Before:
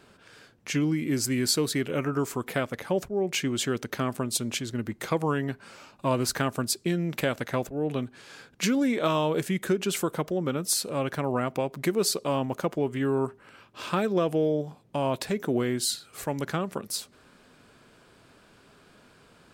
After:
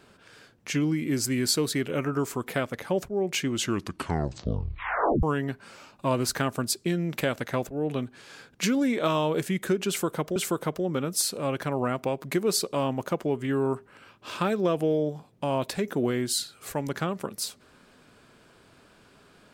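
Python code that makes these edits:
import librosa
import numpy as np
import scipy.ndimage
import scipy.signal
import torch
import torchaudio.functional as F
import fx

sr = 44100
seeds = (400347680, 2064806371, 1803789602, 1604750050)

y = fx.edit(x, sr, fx.tape_stop(start_s=3.5, length_s=1.73),
    fx.repeat(start_s=9.88, length_s=0.48, count=2), tone=tone)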